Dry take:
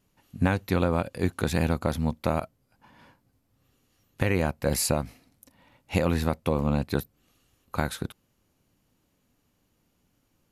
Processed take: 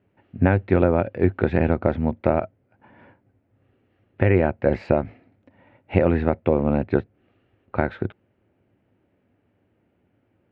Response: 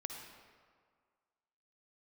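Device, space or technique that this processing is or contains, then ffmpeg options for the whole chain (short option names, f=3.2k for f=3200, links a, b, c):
bass cabinet: -af "highpass=83,equalizer=f=100:t=q:w=4:g=6,equalizer=f=150:t=q:w=4:g=-5,equalizer=f=370:t=q:w=4:g=6,equalizer=f=620:t=q:w=4:g=4,equalizer=f=1.1k:t=q:w=4:g=-8,lowpass=f=2.3k:w=0.5412,lowpass=f=2.3k:w=1.3066,volume=5dB"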